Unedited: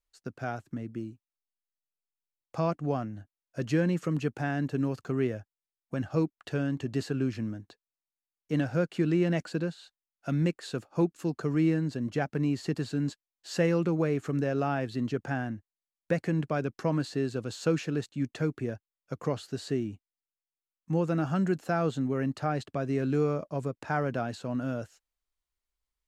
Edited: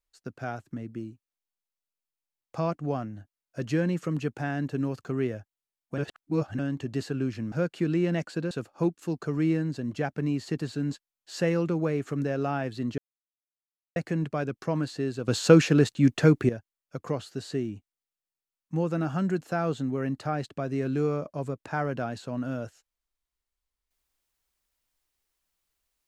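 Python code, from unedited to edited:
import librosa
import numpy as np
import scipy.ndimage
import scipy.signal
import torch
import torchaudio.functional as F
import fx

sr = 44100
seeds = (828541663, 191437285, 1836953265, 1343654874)

y = fx.edit(x, sr, fx.reverse_span(start_s=5.98, length_s=0.61),
    fx.cut(start_s=7.52, length_s=1.18),
    fx.cut(start_s=9.69, length_s=0.99),
    fx.silence(start_s=15.15, length_s=0.98),
    fx.clip_gain(start_s=17.45, length_s=1.21, db=10.5), tone=tone)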